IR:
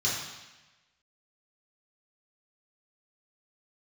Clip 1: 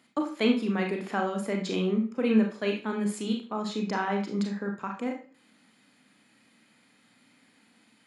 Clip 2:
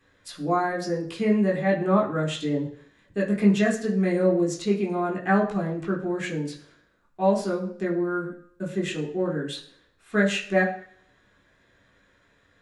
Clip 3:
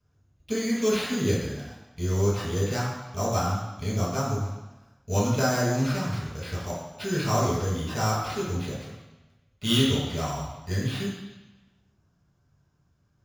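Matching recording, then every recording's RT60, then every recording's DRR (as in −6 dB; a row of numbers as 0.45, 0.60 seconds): 3; 0.40, 0.60, 1.1 seconds; 1.5, −3.0, −7.5 decibels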